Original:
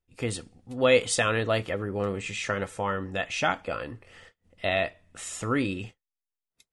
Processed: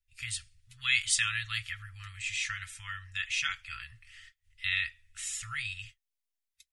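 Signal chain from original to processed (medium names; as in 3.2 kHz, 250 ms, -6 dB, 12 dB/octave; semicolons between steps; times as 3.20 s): inverse Chebyshev band-stop 220–710 Hz, stop band 60 dB; comb 5.9 ms, depth 43%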